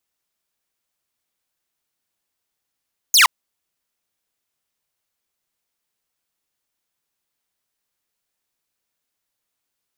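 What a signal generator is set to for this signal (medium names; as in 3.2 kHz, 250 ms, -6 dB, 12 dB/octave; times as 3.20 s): laser zap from 7 kHz, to 890 Hz, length 0.12 s saw, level -6 dB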